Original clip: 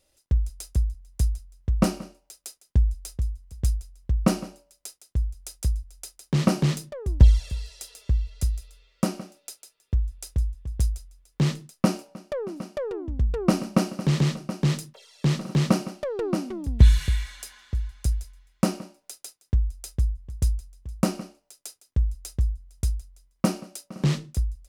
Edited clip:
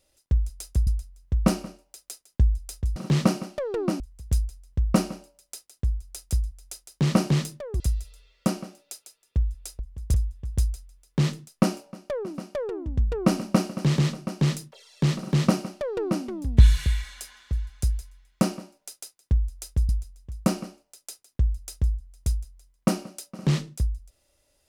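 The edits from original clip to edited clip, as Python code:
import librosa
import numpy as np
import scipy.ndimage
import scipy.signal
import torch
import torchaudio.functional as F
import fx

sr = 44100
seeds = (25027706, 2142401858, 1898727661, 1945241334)

y = fx.edit(x, sr, fx.cut(start_s=0.87, length_s=0.36),
    fx.cut(start_s=7.12, length_s=1.25),
    fx.duplicate(start_s=15.41, length_s=1.04, to_s=3.32),
    fx.move(start_s=20.11, length_s=0.35, to_s=10.36), tone=tone)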